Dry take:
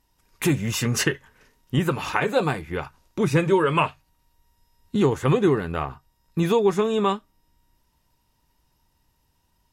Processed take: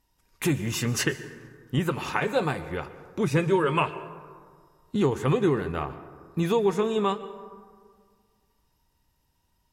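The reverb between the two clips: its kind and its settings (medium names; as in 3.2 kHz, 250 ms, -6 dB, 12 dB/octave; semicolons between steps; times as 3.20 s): plate-style reverb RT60 1.9 s, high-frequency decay 0.4×, pre-delay 105 ms, DRR 14 dB; trim -3.5 dB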